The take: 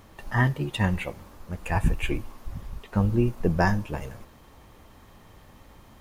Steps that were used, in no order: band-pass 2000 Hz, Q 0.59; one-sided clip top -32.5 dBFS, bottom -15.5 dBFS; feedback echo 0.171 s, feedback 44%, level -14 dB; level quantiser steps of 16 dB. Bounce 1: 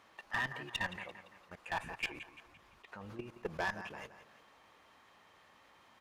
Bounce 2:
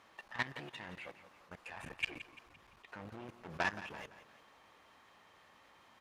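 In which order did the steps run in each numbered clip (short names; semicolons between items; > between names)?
band-pass > level quantiser > feedback echo > one-sided clip; one-sided clip > band-pass > level quantiser > feedback echo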